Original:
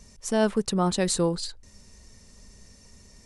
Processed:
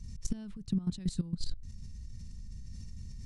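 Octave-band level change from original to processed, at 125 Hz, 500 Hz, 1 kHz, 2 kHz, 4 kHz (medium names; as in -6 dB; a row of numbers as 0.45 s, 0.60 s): -4.5 dB, -28.5 dB, under -30 dB, under -25 dB, -14.0 dB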